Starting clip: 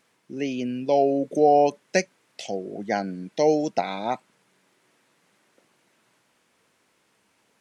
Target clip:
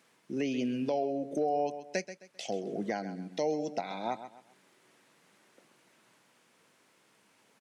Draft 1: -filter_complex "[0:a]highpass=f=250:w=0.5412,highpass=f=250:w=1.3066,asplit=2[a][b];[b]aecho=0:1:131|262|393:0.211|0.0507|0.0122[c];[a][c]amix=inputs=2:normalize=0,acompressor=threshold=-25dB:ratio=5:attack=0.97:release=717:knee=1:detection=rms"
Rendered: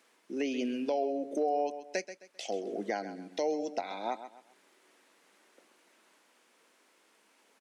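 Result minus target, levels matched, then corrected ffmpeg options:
125 Hz band -11.5 dB
-filter_complex "[0:a]highpass=f=110:w=0.5412,highpass=f=110:w=1.3066,asplit=2[a][b];[b]aecho=0:1:131|262|393:0.211|0.0507|0.0122[c];[a][c]amix=inputs=2:normalize=0,acompressor=threshold=-25dB:ratio=5:attack=0.97:release=717:knee=1:detection=rms"

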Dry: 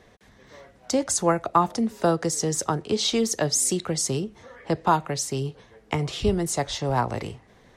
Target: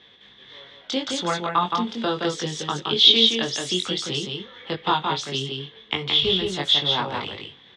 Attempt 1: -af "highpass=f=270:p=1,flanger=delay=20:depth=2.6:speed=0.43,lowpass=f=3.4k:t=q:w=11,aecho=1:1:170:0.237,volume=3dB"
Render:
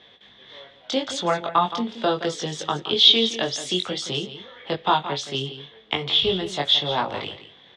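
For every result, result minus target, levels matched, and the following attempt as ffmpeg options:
echo-to-direct -8.5 dB; 500 Hz band +2.5 dB
-af "highpass=f=270:p=1,flanger=delay=20:depth=2.6:speed=0.43,lowpass=f=3.4k:t=q:w=11,aecho=1:1:170:0.631,volume=3dB"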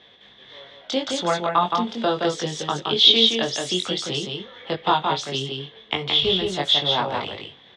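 500 Hz band +2.5 dB
-af "highpass=f=270:p=1,flanger=delay=20:depth=2.6:speed=0.43,lowpass=f=3.4k:t=q:w=11,equalizer=f=650:w=2.2:g=-7.5,aecho=1:1:170:0.631,volume=3dB"

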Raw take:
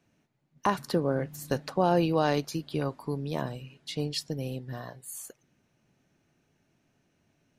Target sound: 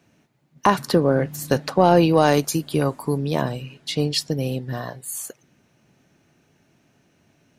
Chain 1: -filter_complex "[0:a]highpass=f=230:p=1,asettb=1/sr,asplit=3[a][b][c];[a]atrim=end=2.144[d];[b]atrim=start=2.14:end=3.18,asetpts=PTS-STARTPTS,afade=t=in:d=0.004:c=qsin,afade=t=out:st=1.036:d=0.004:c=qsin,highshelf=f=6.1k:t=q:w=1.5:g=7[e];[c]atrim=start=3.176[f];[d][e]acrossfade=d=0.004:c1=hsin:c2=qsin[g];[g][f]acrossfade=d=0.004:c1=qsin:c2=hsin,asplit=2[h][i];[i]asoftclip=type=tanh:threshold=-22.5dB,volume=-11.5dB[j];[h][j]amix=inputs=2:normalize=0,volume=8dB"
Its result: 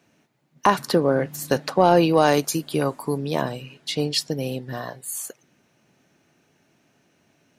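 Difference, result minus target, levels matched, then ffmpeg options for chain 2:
125 Hz band -3.5 dB
-filter_complex "[0:a]highpass=f=58:p=1,asettb=1/sr,asplit=3[a][b][c];[a]atrim=end=2.144[d];[b]atrim=start=2.14:end=3.18,asetpts=PTS-STARTPTS,afade=t=in:d=0.004:c=qsin,afade=t=out:st=1.036:d=0.004:c=qsin,highshelf=f=6.1k:t=q:w=1.5:g=7[e];[c]atrim=start=3.176[f];[d][e]acrossfade=d=0.004:c1=hsin:c2=qsin[g];[g][f]acrossfade=d=0.004:c1=qsin:c2=hsin,asplit=2[h][i];[i]asoftclip=type=tanh:threshold=-22.5dB,volume=-11.5dB[j];[h][j]amix=inputs=2:normalize=0,volume=8dB"

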